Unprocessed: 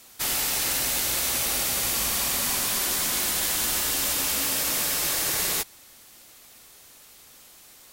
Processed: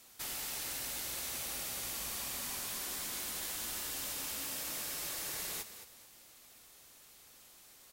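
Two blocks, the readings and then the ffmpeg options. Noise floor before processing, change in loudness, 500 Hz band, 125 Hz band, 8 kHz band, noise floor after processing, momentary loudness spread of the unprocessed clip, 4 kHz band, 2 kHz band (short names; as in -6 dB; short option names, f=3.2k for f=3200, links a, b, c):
-51 dBFS, -14.5 dB, -14.5 dB, -14.5 dB, -14.5 dB, -59 dBFS, 1 LU, -14.5 dB, -14.5 dB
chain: -filter_complex "[0:a]acompressor=threshold=-40dB:ratio=1.5,asplit=2[a][b];[b]asplit=3[c][d][e];[c]adelay=217,afreqshift=42,volume=-11dB[f];[d]adelay=434,afreqshift=84,volume=-20.9dB[g];[e]adelay=651,afreqshift=126,volume=-30.8dB[h];[f][g][h]amix=inputs=3:normalize=0[i];[a][i]amix=inputs=2:normalize=0,volume=-8.5dB"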